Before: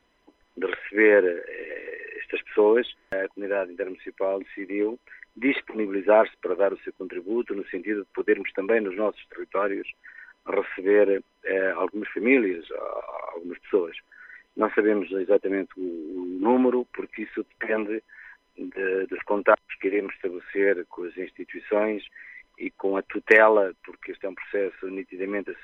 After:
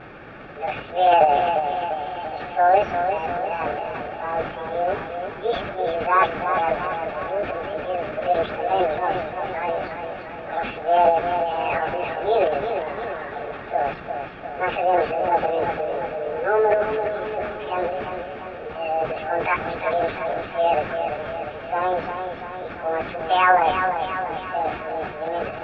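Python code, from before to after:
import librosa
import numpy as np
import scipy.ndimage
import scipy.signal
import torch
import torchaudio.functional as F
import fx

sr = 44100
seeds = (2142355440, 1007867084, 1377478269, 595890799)

p1 = fx.pitch_bins(x, sr, semitones=9.0)
p2 = fx.dmg_noise_colour(p1, sr, seeds[0], colour='pink', level_db=-40.0)
p3 = fx.transient(p2, sr, attack_db=-2, sustain_db=11)
p4 = p3 + fx.echo_feedback(p3, sr, ms=346, feedback_pct=57, wet_db=-7.0, dry=0)
p5 = fx.vibrato(p4, sr, rate_hz=0.55, depth_cents=20.0)
p6 = scipy.signal.sosfilt(scipy.signal.butter(4, 2300.0, 'lowpass', fs=sr, output='sos'), p5)
p7 = fx.low_shelf(p6, sr, hz=270.0, db=-6.0)
p8 = fx.notch_comb(p7, sr, f0_hz=1000.0)
y = p8 * librosa.db_to_amplitude(4.5)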